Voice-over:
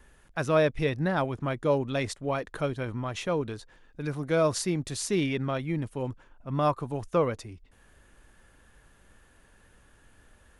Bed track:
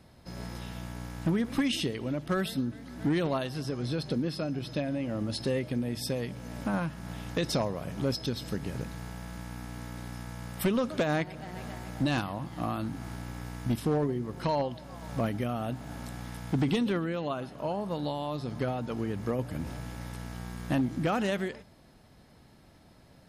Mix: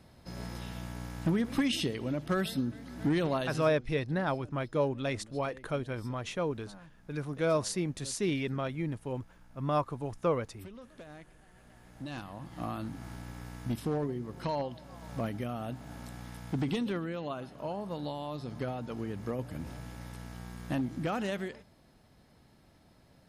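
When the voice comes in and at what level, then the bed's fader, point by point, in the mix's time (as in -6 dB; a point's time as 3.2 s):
3.10 s, -4.0 dB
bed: 3.56 s -1 dB
3.81 s -21.5 dB
11.56 s -21.5 dB
12.6 s -4.5 dB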